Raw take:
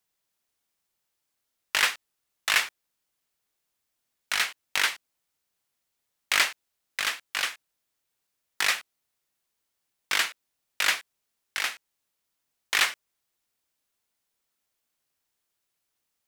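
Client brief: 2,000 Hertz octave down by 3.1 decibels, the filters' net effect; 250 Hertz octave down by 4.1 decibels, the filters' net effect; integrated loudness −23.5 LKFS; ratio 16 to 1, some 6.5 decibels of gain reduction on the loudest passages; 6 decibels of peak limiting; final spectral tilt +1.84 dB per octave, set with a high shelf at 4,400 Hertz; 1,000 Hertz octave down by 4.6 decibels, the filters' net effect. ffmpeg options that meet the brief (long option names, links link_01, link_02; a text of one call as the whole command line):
ffmpeg -i in.wav -af "equalizer=frequency=250:width_type=o:gain=-5.5,equalizer=frequency=1000:width_type=o:gain=-5,equalizer=frequency=2000:width_type=o:gain=-4,highshelf=frequency=4400:gain=7,acompressor=threshold=-24dB:ratio=16,volume=9dB,alimiter=limit=-5.5dB:level=0:latency=1" out.wav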